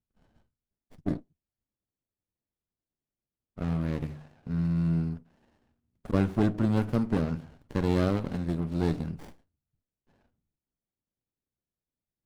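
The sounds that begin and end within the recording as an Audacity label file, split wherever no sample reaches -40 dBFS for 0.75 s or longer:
1.060000	1.190000	sound
3.580000	5.190000	sound
6.050000	9.290000	sound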